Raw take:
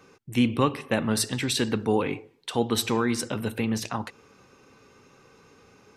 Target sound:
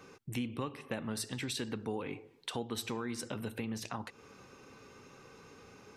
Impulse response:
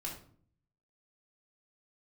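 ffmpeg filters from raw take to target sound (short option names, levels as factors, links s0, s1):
-af "acompressor=threshold=0.0112:ratio=3"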